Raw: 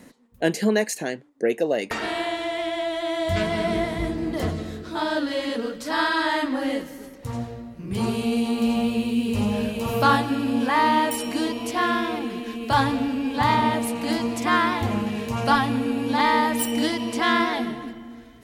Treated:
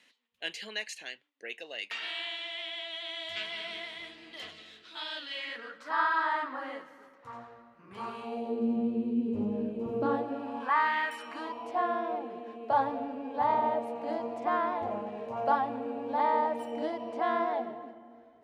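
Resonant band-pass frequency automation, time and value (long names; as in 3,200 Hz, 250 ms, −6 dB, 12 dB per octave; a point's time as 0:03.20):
resonant band-pass, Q 2.6
0:05.28 3,000 Hz
0:05.92 1,200 Hz
0:08.19 1,200 Hz
0:08.67 330 Hz
0:10.00 330 Hz
0:10.97 1,900 Hz
0:11.87 660 Hz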